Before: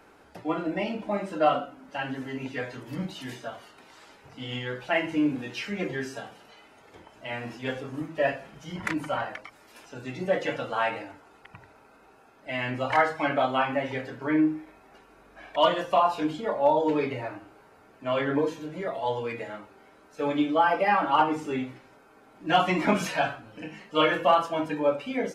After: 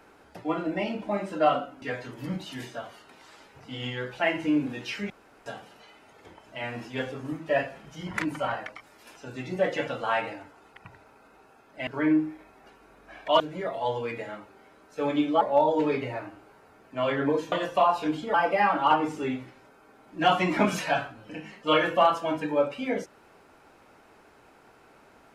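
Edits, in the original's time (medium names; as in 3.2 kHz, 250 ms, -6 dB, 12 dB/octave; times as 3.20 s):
1.82–2.51 s: delete
5.79–6.15 s: room tone
12.56–14.15 s: delete
15.68–16.50 s: swap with 18.61–20.62 s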